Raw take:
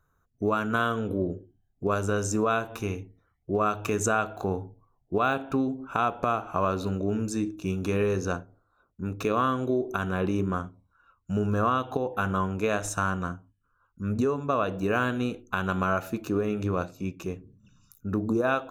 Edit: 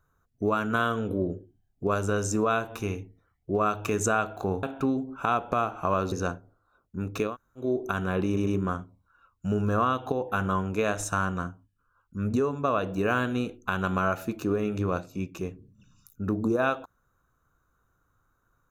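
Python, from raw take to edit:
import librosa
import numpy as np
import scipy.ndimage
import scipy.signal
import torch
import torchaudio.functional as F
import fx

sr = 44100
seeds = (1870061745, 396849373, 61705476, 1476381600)

y = fx.edit(x, sr, fx.cut(start_s=4.63, length_s=0.71),
    fx.cut(start_s=6.83, length_s=1.34),
    fx.room_tone_fill(start_s=9.34, length_s=0.34, crossfade_s=0.16),
    fx.stutter(start_s=10.32, slice_s=0.1, count=3), tone=tone)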